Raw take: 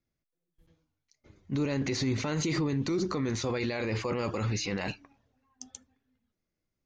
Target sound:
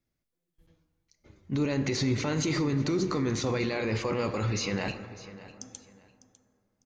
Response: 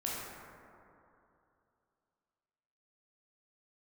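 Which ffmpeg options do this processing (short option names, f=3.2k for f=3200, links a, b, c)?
-filter_complex "[0:a]aecho=1:1:601|1202:0.141|0.0339,asplit=2[a][b];[1:a]atrim=start_sample=2205[c];[b][c]afir=irnorm=-1:irlink=0,volume=-12dB[d];[a][d]amix=inputs=2:normalize=0"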